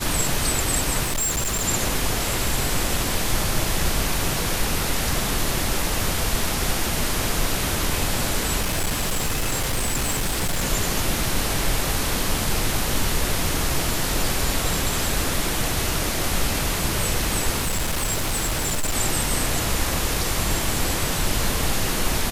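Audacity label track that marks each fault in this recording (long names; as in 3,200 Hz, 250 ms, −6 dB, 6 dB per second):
1.030000	1.650000	clipping −20.5 dBFS
8.610000	10.640000	clipping −19 dBFS
17.600000	18.950000	clipping −19.5 dBFS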